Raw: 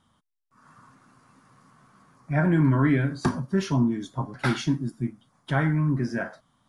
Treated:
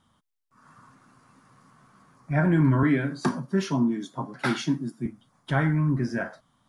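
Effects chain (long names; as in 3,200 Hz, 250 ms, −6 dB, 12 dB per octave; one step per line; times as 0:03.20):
0:02.83–0:05.06: high-pass filter 150 Hz 24 dB per octave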